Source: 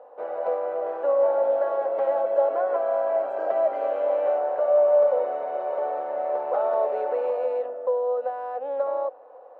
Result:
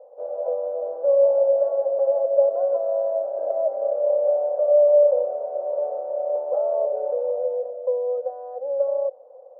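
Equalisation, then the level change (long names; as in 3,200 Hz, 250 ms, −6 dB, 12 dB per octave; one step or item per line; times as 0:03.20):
low-pass with resonance 560 Hz, resonance Q 4.8
parametric band 190 Hz −13 dB 2.5 octaves
−4.5 dB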